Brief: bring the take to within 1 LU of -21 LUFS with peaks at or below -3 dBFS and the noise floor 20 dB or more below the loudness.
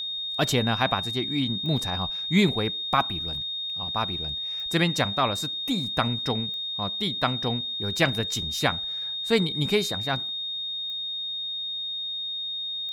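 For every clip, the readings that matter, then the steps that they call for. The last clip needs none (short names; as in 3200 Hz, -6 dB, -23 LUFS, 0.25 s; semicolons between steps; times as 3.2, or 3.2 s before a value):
clicks 5; steady tone 3700 Hz; tone level -29 dBFS; loudness -26.0 LUFS; peak -7.5 dBFS; loudness target -21.0 LUFS
-> de-click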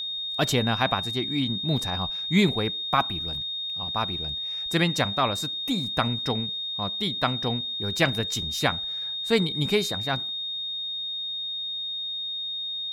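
clicks 0; steady tone 3700 Hz; tone level -29 dBFS
-> notch 3700 Hz, Q 30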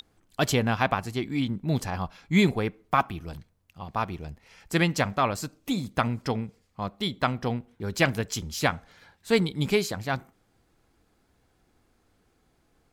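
steady tone none; loudness -27.5 LUFS; peak -8.5 dBFS; loudness target -21.0 LUFS
-> gain +6.5 dB; limiter -3 dBFS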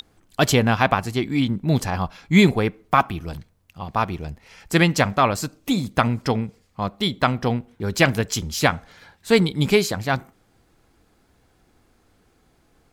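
loudness -21.5 LUFS; peak -3.0 dBFS; noise floor -62 dBFS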